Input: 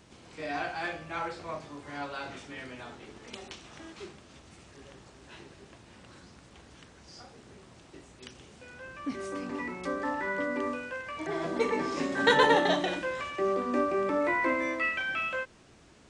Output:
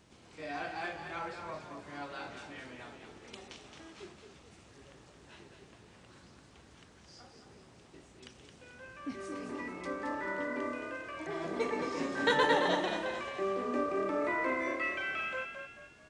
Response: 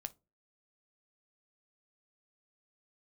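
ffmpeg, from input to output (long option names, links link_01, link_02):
-filter_complex "[0:a]asplit=6[link_01][link_02][link_03][link_04][link_05][link_06];[link_02]adelay=219,afreqshift=34,volume=-7dB[link_07];[link_03]adelay=438,afreqshift=68,volume=-15dB[link_08];[link_04]adelay=657,afreqshift=102,volume=-22.9dB[link_09];[link_05]adelay=876,afreqshift=136,volume=-30.9dB[link_10];[link_06]adelay=1095,afreqshift=170,volume=-38.8dB[link_11];[link_01][link_07][link_08][link_09][link_10][link_11]amix=inputs=6:normalize=0,volume=-5.5dB"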